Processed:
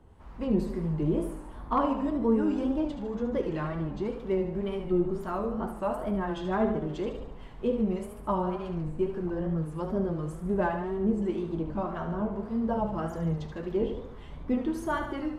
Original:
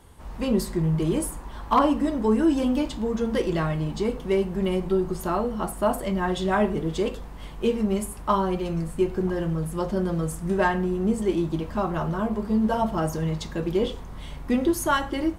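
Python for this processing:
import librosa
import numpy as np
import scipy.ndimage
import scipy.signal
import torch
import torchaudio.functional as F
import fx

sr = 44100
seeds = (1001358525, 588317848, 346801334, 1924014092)

p1 = fx.harmonic_tremolo(x, sr, hz=1.8, depth_pct=50, crossover_hz=900.0)
p2 = p1 + fx.echo_feedback(p1, sr, ms=74, feedback_pct=56, wet_db=-8.0, dry=0)
p3 = fx.wow_flutter(p2, sr, seeds[0], rate_hz=2.1, depth_cents=100.0)
p4 = fx.lowpass(p3, sr, hz=1400.0, slope=6)
y = F.gain(torch.from_numpy(p4), -3.0).numpy()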